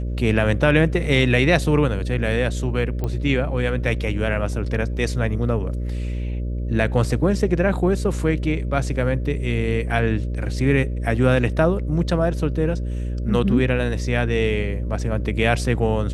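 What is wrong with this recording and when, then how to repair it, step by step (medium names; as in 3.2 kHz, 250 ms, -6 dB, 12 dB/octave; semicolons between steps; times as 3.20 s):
buzz 60 Hz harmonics 10 -25 dBFS
3.04 s: pop -14 dBFS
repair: de-click; de-hum 60 Hz, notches 10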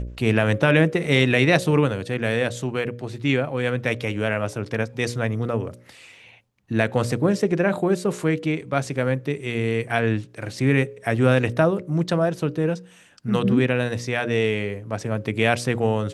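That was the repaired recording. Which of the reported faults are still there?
nothing left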